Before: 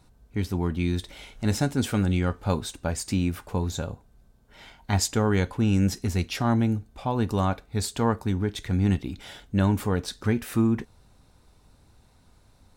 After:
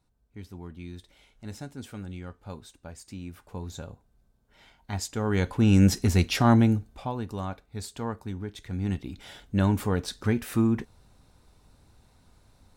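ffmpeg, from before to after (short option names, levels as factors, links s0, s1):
-af "volume=3.98,afade=t=in:st=3.19:d=0.57:silence=0.473151,afade=t=in:st=5.13:d=0.69:silence=0.237137,afade=t=out:st=6.54:d=0.68:silence=0.223872,afade=t=in:st=8.65:d=1:silence=0.398107"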